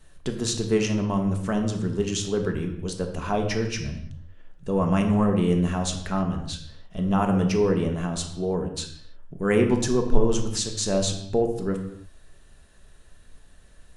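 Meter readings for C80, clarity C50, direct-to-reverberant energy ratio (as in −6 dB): 10.0 dB, 8.0 dB, 3.5 dB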